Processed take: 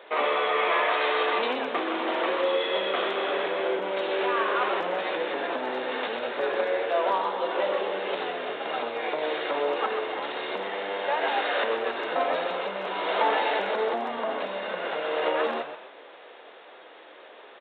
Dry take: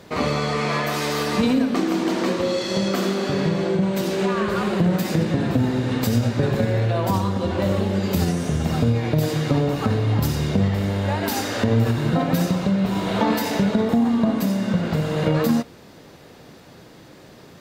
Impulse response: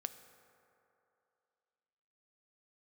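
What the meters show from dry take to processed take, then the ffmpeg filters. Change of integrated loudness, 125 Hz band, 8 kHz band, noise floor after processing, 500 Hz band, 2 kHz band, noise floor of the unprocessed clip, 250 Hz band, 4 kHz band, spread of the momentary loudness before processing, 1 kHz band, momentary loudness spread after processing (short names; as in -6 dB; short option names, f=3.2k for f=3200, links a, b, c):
-5.5 dB, under -35 dB, under -35 dB, -49 dBFS, -2.0 dB, +1.5 dB, -46 dBFS, -18.0 dB, -2.0 dB, 3 LU, +1.5 dB, 7 LU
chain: -filter_complex "[0:a]aresample=8000,aeval=exprs='0.422*sin(PI/2*1.58*val(0)/0.422)':c=same,aresample=44100,asplit=2[a][b];[b]adelay=16,volume=-13.5dB[c];[a][c]amix=inputs=2:normalize=0,asplit=6[d][e][f][g][h][i];[e]adelay=128,afreqshift=-85,volume=-8dB[j];[f]adelay=256,afreqshift=-170,volume=-14.9dB[k];[g]adelay=384,afreqshift=-255,volume=-21.9dB[l];[h]adelay=512,afreqshift=-340,volume=-28.8dB[m];[i]adelay=640,afreqshift=-425,volume=-35.7dB[n];[d][j][k][l][m][n]amix=inputs=6:normalize=0,asoftclip=type=hard:threshold=-4.5dB,highpass=f=460:w=0.5412,highpass=f=460:w=1.3066,volume=-6.5dB"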